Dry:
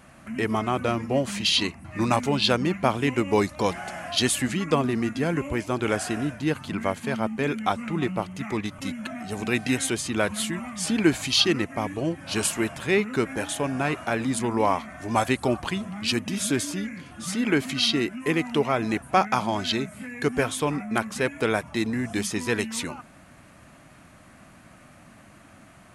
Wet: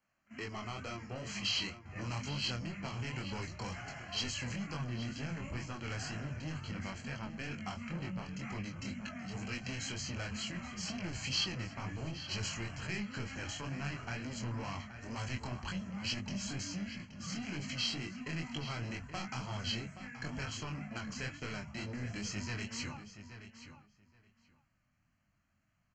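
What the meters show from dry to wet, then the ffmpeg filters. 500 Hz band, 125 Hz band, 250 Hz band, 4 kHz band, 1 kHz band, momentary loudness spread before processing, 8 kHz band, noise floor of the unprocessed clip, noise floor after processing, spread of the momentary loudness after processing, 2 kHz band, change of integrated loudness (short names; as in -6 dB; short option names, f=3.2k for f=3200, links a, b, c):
-22.0 dB, -8.5 dB, -16.0 dB, -11.5 dB, -18.5 dB, 8 LU, -13.5 dB, -51 dBFS, -77 dBFS, 7 LU, -13.0 dB, -14.0 dB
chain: -filter_complex "[0:a]asubboost=boost=6.5:cutoff=150,aresample=16000,asoftclip=type=tanh:threshold=-22.5dB,aresample=44100,agate=range=-22dB:threshold=-34dB:ratio=16:detection=peak,flanger=delay=20:depth=6.2:speed=2.1,acrossover=split=6200[a][b];[b]acompressor=threshold=-51dB:ratio=4:attack=1:release=60[c];[a][c]amix=inputs=2:normalize=0,asplit=2[d][e];[e]adelay=20,volume=-13dB[f];[d][f]amix=inputs=2:normalize=0,acrossover=split=200|3000[g][h][i];[h]acompressor=threshold=-35dB:ratio=6[j];[g][j][i]amix=inputs=3:normalize=0,asuperstop=centerf=3600:order=12:qfactor=5.5,tiltshelf=f=900:g=-4.5,bandreject=f=50:t=h:w=6,bandreject=f=100:t=h:w=6,bandreject=f=150:t=h:w=6,asplit=2[k][l];[l]adelay=825,lowpass=f=4.2k:p=1,volume=-11dB,asplit=2[m][n];[n]adelay=825,lowpass=f=4.2k:p=1,volume=0.16[o];[k][m][o]amix=inputs=3:normalize=0,volume=-5.5dB"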